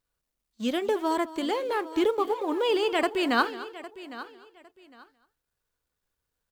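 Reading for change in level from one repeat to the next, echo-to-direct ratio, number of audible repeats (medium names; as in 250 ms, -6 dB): no regular repeats, -13.5 dB, 4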